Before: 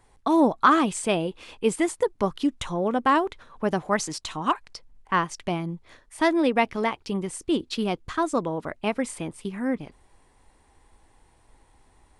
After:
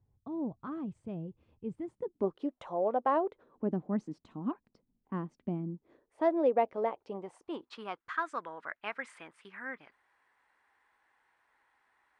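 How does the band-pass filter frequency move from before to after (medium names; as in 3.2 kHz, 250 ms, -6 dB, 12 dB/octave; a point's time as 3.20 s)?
band-pass filter, Q 2.5
1.78 s 110 Hz
2.51 s 630 Hz
3.10 s 630 Hz
3.79 s 230 Hz
5.62 s 230 Hz
6.27 s 560 Hz
6.97 s 560 Hz
8.16 s 1.6 kHz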